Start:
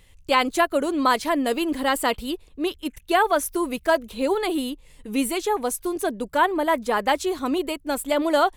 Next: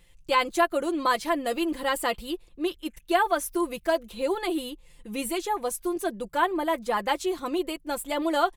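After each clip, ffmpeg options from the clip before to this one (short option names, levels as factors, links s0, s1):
-af "aecho=1:1:5.8:0.58,volume=0.531"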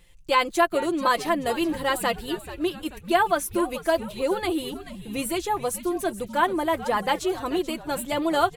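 -filter_complex "[0:a]asplit=6[s0][s1][s2][s3][s4][s5];[s1]adelay=434,afreqshift=-130,volume=0.2[s6];[s2]adelay=868,afreqshift=-260,volume=0.0977[s7];[s3]adelay=1302,afreqshift=-390,volume=0.0479[s8];[s4]adelay=1736,afreqshift=-520,volume=0.0234[s9];[s5]adelay=2170,afreqshift=-650,volume=0.0115[s10];[s0][s6][s7][s8][s9][s10]amix=inputs=6:normalize=0,volume=1.26"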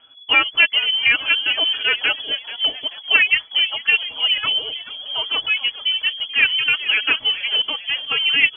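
-af "lowpass=f=2900:t=q:w=0.5098,lowpass=f=2900:t=q:w=0.6013,lowpass=f=2900:t=q:w=0.9,lowpass=f=2900:t=q:w=2.563,afreqshift=-3400,volume=1.88"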